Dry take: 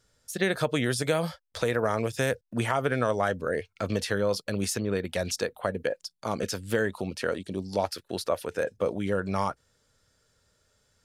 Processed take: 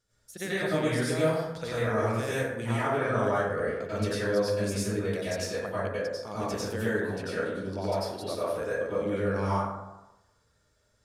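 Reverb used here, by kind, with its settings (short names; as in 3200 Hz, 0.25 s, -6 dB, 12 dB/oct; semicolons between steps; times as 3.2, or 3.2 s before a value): plate-style reverb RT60 1 s, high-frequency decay 0.45×, pre-delay 80 ms, DRR -9.5 dB; gain -11 dB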